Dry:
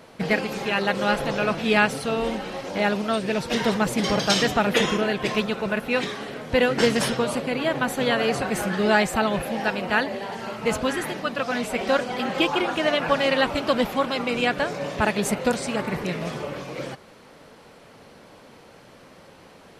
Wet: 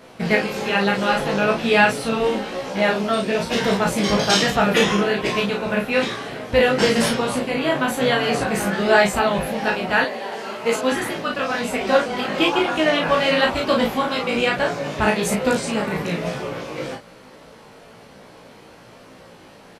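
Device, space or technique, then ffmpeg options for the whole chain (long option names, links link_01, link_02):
double-tracked vocal: -filter_complex "[0:a]asplit=2[link_01][link_02];[link_02]adelay=35,volume=-3.5dB[link_03];[link_01][link_03]amix=inputs=2:normalize=0,flanger=delay=15.5:depth=4:speed=1.1,asettb=1/sr,asplit=3[link_04][link_05][link_06];[link_04]atrim=end=10.044[link_07];[link_05]atrim=start=10.04:end=10.92,asetpts=PTS-STARTPTS,afade=type=in:duration=0.004:curve=qsin,afade=type=out:start_time=0.876:duration=0.004:curve=qsin,highpass=280[link_08];[link_06]atrim=start=10.916[link_09];[link_07][link_08]acrossfade=duration=0.004:curve1=hsin:curve2=qsin[link_10];[link_10][link_09]acrossfade=duration=0.004:curve1=qsin:curve2=hsin,volume=5dB"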